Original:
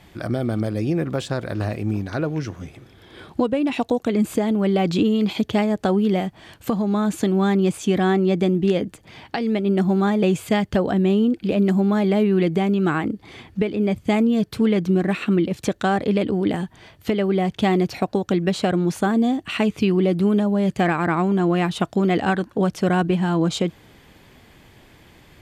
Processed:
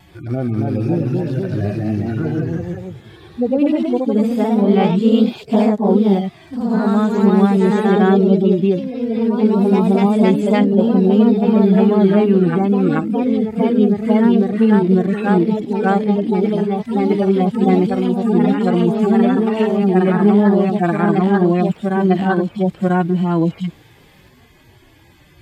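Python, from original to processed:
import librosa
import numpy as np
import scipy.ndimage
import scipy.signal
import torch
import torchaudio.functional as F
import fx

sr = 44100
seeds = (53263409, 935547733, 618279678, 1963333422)

y = fx.hpss_only(x, sr, part='harmonic')
y = fx.vibrato(y, sr, rate_hz=0.51, depth_cents=8.2)
y = fx.echo_pitch(y, sr, ms=293, semitones=1, count=3, db_per_echo=-3.0)
y = F.gain(torch.from_numpy(y), 4.0).numpy()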